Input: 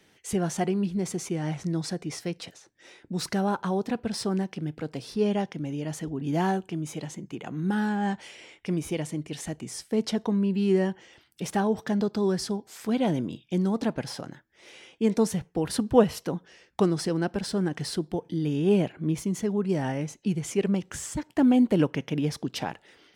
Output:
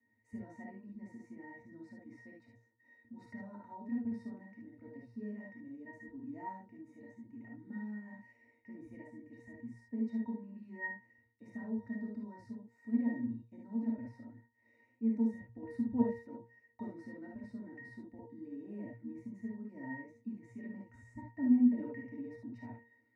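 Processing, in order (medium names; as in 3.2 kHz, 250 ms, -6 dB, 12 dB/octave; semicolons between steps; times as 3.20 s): static phaser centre 730 Hz, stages 8; pitch-class resonator A#, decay 0.35 s; gated-style reverb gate 90 ms rising, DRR -1 dB; trim +4.5 dB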